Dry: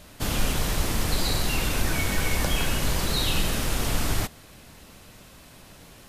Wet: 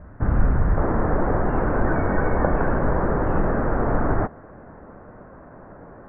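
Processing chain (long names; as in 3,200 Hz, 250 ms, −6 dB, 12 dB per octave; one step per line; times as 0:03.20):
Butterworth low-pass 1,700 Hz 48 dB per octave
parametric band 61 Hz +8.5 dB 2.6 octaves, from 0:00.77 530 Hz
level +2.5 dB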